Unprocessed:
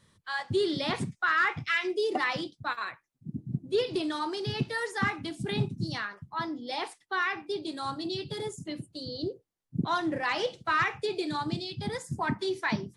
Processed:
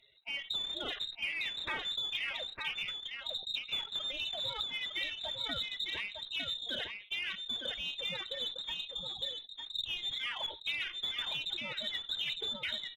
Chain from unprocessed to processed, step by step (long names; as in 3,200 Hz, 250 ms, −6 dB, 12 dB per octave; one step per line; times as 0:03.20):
spectral magnitudes quantised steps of 30 dB
downward compressor 12 to 1, threshold −32 dBFS, peak gain reduction 11 dB
transient designer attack 0 dB, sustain −7 dB
voice inversion scrambler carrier 3,900 Hz
on a send: single-tap delay 906 ms −5 dB
on the sum: harmonic generator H 5 −39 dB, 8 −34 dB, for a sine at −21 dBFS
level that may fall only so fast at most 140 dB per second
level −2 dB